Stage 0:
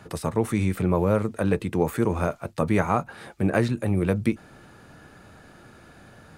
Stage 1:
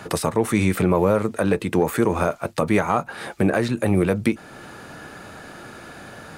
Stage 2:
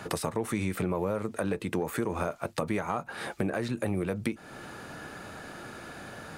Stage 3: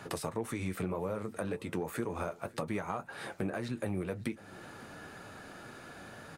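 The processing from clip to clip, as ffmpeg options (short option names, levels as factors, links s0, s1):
-af "lowshelf=f=160:g=-10.5,acontrast=85,alimiter=limit=0.224:level=0:latency=1:release=394,volume=1.68"
-af "acompressor=threshold=0.0562:ratio=3,volume=0.668"
-af "flanger=delay=7:depth=4:regen=-54:speed=1.9:shape=sinusoidal,aecho=1:1:552|1104:0.0708|0.0248,volume=0.841"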